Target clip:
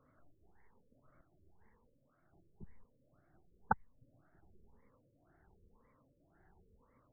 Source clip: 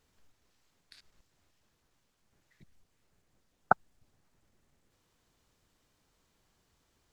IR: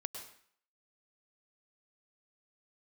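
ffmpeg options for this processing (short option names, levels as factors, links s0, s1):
-filter_complex "[0:a]afftfilt=real='re*pow(10,14/40*sin(2*PI*(0.92*log(max(b,1)*sr/1024/100)/log(2)-(1)*(pts-256)/sr)))':imag='im*pow(10,14/40*sin(2*PI*(0.92*log(max(b,1)*sr/1024/100)/log(2)-(1)*(pts-256)/sr)))':win_size=1024:overlap=0.75,acrossover=split=140|1900[s0][s1][s2];[s0]crystalizer=i=0.5:c=0[s3];[s1]acompressor=threshold=0.0141:ratio=8[s4];[s3][s4][s2]amix=inputs=3:normalize=0,afftfilt=real='re*lt(b*sr/1024,580*pow(2300/580,0.5+0.5*sin(2*PI*1.9*pts/sr)))':imag='im*lt(b*sr/1024,580*pow(2300/580,0.5+0.5*sin(2*PI*1.9*pts/sr)))':win_size=1024:overlap=0.75,volume=1.58"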